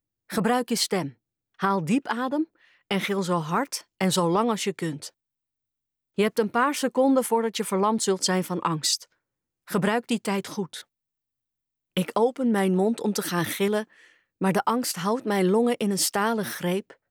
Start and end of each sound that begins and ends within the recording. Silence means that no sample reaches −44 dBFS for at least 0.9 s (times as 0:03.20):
0:06.18–0:10.81